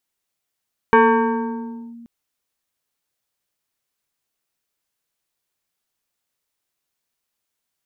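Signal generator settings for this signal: FM tone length 1.13 s, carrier 234 Hz, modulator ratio 2.9, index 1.9, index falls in 1.02 s linear, decay 2.19 s, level -7.5 dB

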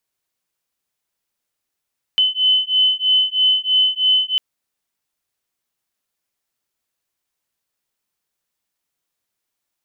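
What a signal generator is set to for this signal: beating tones 3030 Hz, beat 3.1 Hz, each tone -16.5 dBFS 2.20 s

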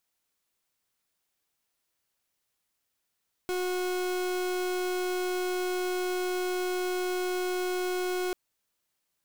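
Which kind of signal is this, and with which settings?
pulse 364 Hz, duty 39% -30 dBFS 4.84 s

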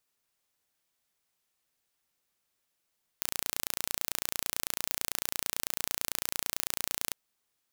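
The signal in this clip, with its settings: pulse train 29/s, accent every 0, -3.5 dBFS 3.93 s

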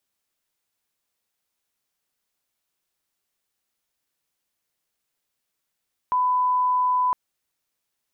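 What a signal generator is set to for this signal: line-up tone -18 dBFS 1.01 s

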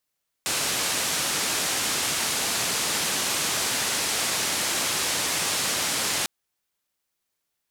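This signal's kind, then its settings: noise band 100–9200 Hz, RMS -26 dBFS 5.80 s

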